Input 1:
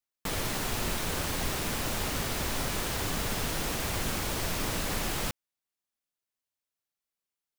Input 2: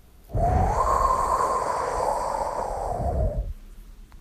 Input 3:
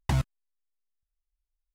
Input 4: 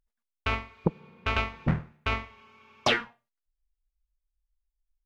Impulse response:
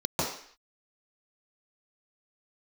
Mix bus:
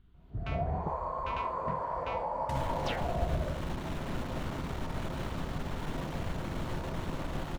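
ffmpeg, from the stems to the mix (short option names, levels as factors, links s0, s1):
-filter_complex "[0:a]lowpass=f=1400:p=1,alimiter=level_in=1.26:limit=0.0631:level=0:latency=1:release=133,volume=0.794,aeval=exprs='clip(val(0),-1,0.00708)':c=same,adelay=2300,volume=0.841,asplit=2[s0][s1];[s1]volume=0.211[s2];[1:a]highshelf=f=4200:t=q:w=1.5:g=-13,alimiter=limit=0.112:level=0:latency=1:release=174,volume=0.141,asplit=2[s3][s4];[s4]volume=0.631[s5];[2:a]adelay=2400,volume=0.266[s6];[3:a]volume=0.2[s7];[4:a]atrim=start_sample=2205[s8];[s2][s5]amix=inputs=2:normalize=0[s9];[s9][s8]afir=irnorm=-1:irlink=0[s10];[s0][s3][s6][s7][s10]amix=inputs=5:normalize=0"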